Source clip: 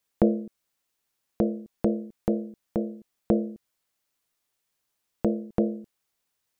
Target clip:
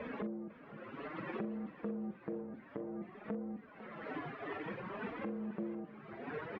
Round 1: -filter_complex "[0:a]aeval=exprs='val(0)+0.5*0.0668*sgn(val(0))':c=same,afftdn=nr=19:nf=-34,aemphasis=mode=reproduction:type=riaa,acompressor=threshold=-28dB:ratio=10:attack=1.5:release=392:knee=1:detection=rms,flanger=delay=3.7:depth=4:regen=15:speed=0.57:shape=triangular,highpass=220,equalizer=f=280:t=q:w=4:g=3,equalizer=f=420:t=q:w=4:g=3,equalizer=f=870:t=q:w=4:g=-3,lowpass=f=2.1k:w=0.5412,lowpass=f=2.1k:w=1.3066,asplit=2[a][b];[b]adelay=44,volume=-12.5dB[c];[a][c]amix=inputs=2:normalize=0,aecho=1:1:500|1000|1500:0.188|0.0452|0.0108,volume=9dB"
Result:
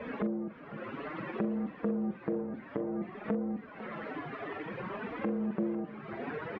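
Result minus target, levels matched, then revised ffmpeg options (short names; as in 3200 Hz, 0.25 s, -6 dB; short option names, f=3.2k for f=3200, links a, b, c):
compressor: peak gain reduction -8 dB
-filter_complex "[0:a]aeval=exprs='val(0)+0.5*0.0668*sgn(val(0))':c=same,afftdn=nr=19:nf=-34,aemphasis=mode=reproduction:type=riaa,acompressor=threshold=-37dB:ratio=10:attack=1.5:release=392:knee=1:detection=rms,flanger=delay=3.7:depth=4:regen=15:speed=0.57:shape=triangular,highpass=220,equalizer=f=280:t=q:w=4:g=3,equalizer=f=420:t=q:w=4:g=3,equalizer=f=870:t=q:w=4:g=-3,lowpass=f=2.1k:w=0.5412,lowpass=f=2.1k:w=1.3066,asplit=2[a][b];[b]adelay=44,volume=-12.5dB[c];[a][c]amix=inputs=2:normalize=0,aecho=1:1:500|1000|1500:0.188|0.0452|0.0108,volume=9dB"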